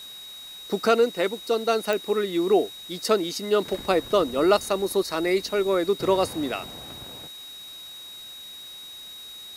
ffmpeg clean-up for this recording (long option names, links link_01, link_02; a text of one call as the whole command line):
ffmpeg -i in.wav -af "adeclick=threshold=4,bandreject=frequency=3800:width=30,afwtdn=0.004" out.wav